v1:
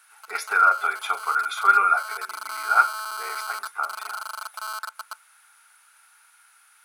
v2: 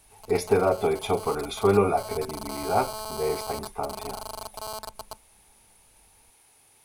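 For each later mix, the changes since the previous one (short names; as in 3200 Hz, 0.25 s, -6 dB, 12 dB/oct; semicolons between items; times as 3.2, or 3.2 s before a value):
master: remove resonant high-pass 1400 Hz, resonance Q 12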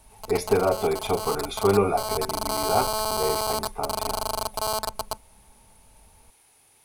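background +9.0 dB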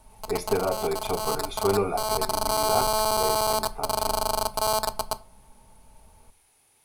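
speech -5.0 dB; reverb: on, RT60 0.35 s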